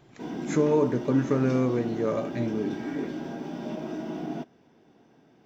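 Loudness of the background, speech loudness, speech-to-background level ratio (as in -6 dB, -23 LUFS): -35.0 LUFS, -26.5 LUFS, 8.5 dB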